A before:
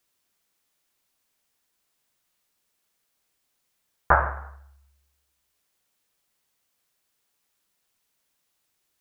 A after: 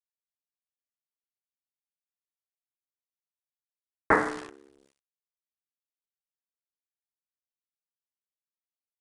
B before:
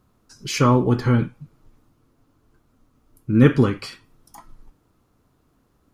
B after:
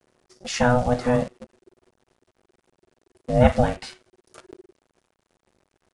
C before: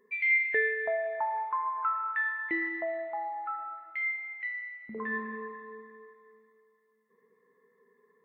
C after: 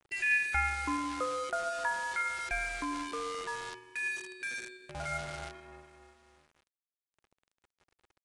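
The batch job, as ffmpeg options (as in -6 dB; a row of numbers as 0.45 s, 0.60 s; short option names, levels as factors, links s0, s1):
-af "acrusher=bits=7:dc=4:mix=0:aa=0.000001,aresample=22050,aresample=44100,aeval=exprs='val(0)*sin(2*PI*370*n/s)':c=same"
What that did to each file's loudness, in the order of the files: -3.0 LU, -3.0 LU, -2.5 LU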